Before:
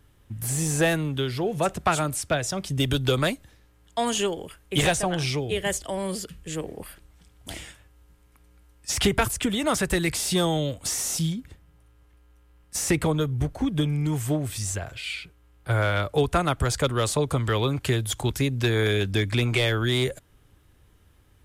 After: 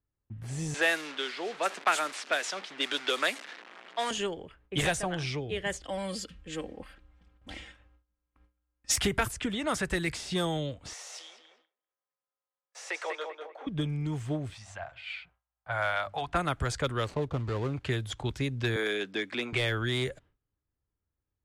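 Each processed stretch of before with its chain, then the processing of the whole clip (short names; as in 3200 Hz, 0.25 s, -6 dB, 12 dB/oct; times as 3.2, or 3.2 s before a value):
0.74–4.11 delta modulation 64 kbps, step -31 dBFS + Bessel high-pass 410 Hz, order 8 + bell 2900 Hz +5.5 dB 2.9 oct
5.83–8.96 high shelf 2900 Hz +8.5 dB + comb 3.8 ms, depth 58%
10.93–13.67 steep high-pass 480 Hz + darkening echo 0.196 s, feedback 39%, low-pass 4900 Hz, level -5 dB
14.54–16.35 resonant low shelf 540 Hz -9 dB, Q 3 + notches 50/100/150/200/250/300/350/400 Hz
17.04–17.74 median filter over 25 samples + mismatched tape noise reduction encoder only
18.76–19.53 HPF 230 Hz 24 dB/oct + high shelf 9800 Hz +3.5 dB
whole clip: dynamic EQ 1700 Hz, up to +4 dB, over -38 dBFS, Q 1.5; low-pass opened by the level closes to 1700 Hz, open at -17 dBFS; gate with hold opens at -46 dBFS; gain -7 dB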